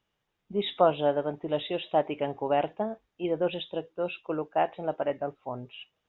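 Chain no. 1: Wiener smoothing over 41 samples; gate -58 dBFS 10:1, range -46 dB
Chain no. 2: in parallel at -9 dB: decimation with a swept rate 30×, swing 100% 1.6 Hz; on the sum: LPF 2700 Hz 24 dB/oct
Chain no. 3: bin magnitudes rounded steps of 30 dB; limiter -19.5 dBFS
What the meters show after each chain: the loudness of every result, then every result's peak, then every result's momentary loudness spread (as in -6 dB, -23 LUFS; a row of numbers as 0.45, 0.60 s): -31.0, -29.0, -33.5 LUFS; -9.5, -7.0, -19.5 dBFS; 13, 10, 6 LU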